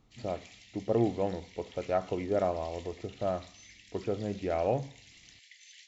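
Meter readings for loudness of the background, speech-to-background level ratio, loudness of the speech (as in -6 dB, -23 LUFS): -53.0 LUFS, 19.5 dB, -33.5 LUFS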